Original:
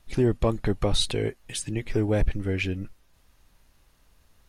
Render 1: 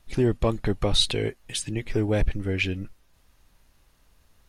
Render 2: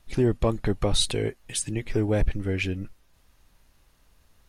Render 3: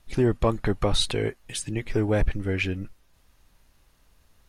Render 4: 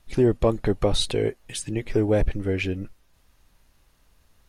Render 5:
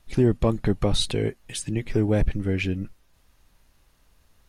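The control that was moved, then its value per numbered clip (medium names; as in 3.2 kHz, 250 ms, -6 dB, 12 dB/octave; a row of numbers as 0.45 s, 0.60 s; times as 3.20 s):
dynamic bell, frequency: 3.3 kHz, 9.1 kHz, 1.3 kHz, 490 Hz, 180 Hz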